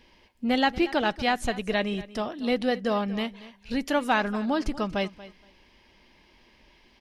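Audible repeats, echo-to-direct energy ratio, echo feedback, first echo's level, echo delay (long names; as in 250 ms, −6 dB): 2, −17.5 dB, 18%, −17.5 dB, 235 ms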